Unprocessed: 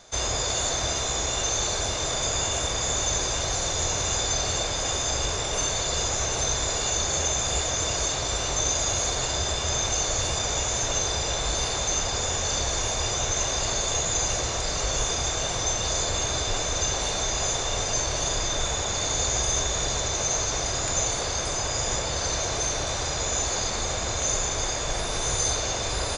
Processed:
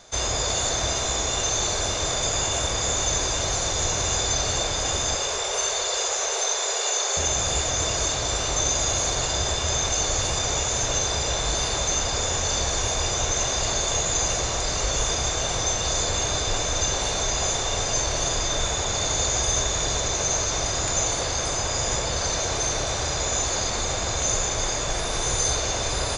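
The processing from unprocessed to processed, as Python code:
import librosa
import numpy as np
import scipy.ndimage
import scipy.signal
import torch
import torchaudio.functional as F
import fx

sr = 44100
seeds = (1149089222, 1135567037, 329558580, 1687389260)

y = fx.steep_highpass(x, sr, hz=370.0, slope=96, at=(5.15, 7.17))
y = fx.echo_alternate(y, sr, ms=231, hz=1700.0, feedback_pct=69, wet_db=-10.5)
y = y * librosa.db_to_amplitude(1.5)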